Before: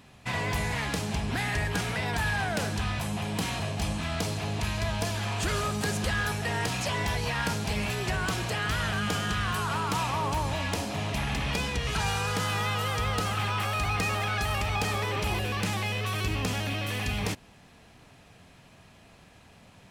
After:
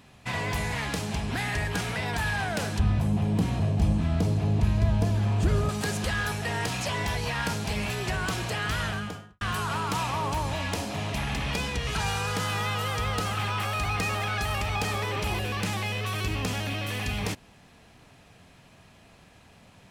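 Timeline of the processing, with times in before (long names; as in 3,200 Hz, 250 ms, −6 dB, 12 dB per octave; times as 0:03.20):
0:02.79–0:05.69: tilt shelving filter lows +9 dB, about 650 Hz
0:08.80–0:09.41: fade out and dull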